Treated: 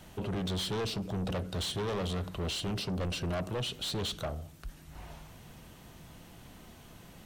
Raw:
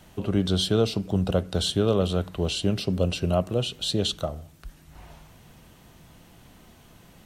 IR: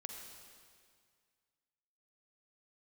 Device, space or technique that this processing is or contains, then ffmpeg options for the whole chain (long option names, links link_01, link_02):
saturation between pre-emphasis and de-emphasis: -af "highshelf=frequency=8300:gain=10.5,asoftclip=type=tanh:threshold=-30.5dB,highshelf=frequency=8300:gain=-10.5"